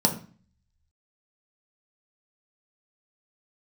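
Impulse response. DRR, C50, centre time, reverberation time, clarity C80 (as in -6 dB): 2.5 dB, 11.0 dB, 13 ms, 0.40 s, 15.5 dB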